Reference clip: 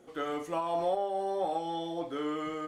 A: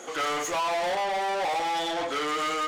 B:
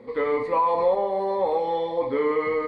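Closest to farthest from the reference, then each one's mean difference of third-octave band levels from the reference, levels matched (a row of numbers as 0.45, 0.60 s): B, A; 6.0, 9.5 dB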